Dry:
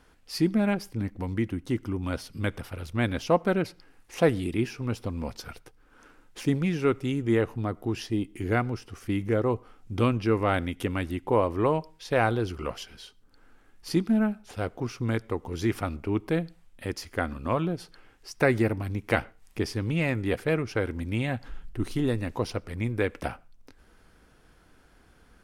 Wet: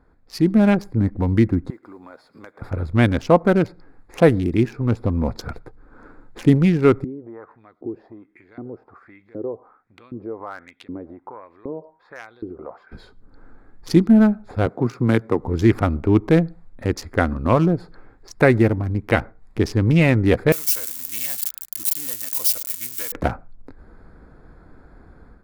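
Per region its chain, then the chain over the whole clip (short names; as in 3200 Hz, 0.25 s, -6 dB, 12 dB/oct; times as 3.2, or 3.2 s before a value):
1.7–2.62 HPF 590 Hz + compressor 3:1, threshold -51 dBFS + modulation noise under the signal 17 dB
7.04–12.92 compressor 3:1, threshold -34 dBFS + LFO band-pass saw up 1.3 Hz 290–4400 Hz
14.66–15.4 HPF 120 Hz 24 dB/oct + high shelf 12000 Hz +6 dB
20.52–23.12 switching spikes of -20.5 dBFS + differentiator + notch comb 400 Hz
whole clip: Wiener smoothing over 15 samples; low shelf 390 Hz +3.5 dB; AGC gain up to 10 dB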